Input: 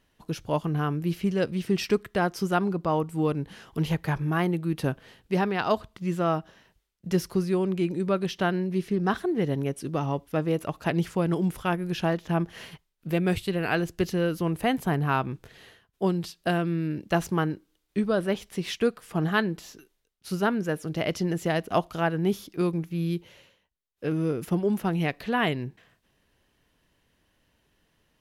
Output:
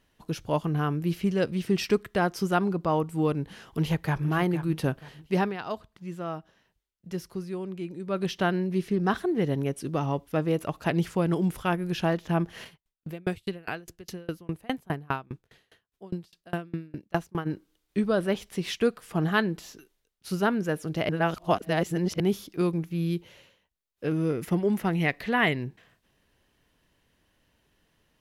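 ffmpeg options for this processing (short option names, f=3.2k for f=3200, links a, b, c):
-filter_complex "[0:a]asplit=2[a][b];[b]afade=t=in:st=3.66:d=0.01,afade=t=out:st=4.27:d=0.01,aecho=0:1:470|940|1410|1880:0.266073|0.0931254|0.0325939|0.0114079[c];[a][c]amix=inputs=2:normalize=0,asplit=3[d][e][f];[d]afade=t=out:st=12.64:d=0.02[g];[e]aeval=exprs='val(0)*pow(10,-31*if(lt(mod(4.9*n/s,1),2*abs(4.9)/1000),1-mod(4.9*n/s,1)/(2*abs(4.9)/1000),(mod(4.9*n/s,1)-2*abs(4.9)/1000)/(1-2*abs(4.9)/1000))/20)':c=same,afade=t=in:st=12.64:d=0.02,afade=t=out:st=17.45:d=0.02[h];[f]afade=t=in:st=17.45:d=0.02[i];[g][h][i]amix=inputs=3:normalize=0,asettb=1/sr,asplit=3[j][k][l];[j]atrim=end=24.304[m];[k]atrim=start=24.3:end=25.59,asetpts=PTS-STARTPTS,afade=t=in:d=0.004:c=qsin,afade=t=out:st=1.286:d=0.004:c=qsin,equalizer=f=2k:t=o:w=0.33:g=8[n];[l]atrim=start=25.586[o];[m][n]acrossfade=d=0.004:c1=hsin:c2=qsin[p];[p][o]acrossfade=d=0.004:c1=qsin:c2=hsin,asplit=5[q][r][s][t][u];[q]atrim=end=5.57,asetpts=PTS-STARTPTS,afade=t=out:st=5.42:d=0.15:silence=0.354813[v];[r]atrim=start=5.57:end=8.07,asetpts=PTS-STARTPTS,volume=-9dB[w];[s]atrim=start=8.07:end=21.092,asetpts=PTS-STARTPTS,afade=t=in:d=0.15:silence=0.354813[x];[t]atrim=start=21.088:end=22.202,asetpts=PTS-STARTPTS,areverse[y];[u]atrim=start=22.198[z];[v][w][x]concat=n=3:v=0:a=1[aa];[aa][y]acrossfade=d=0.004:c1=hsin:c2=hsin[ab];[ab][z]acrossfade=d=0.004:c1=hsin:c2=hsin"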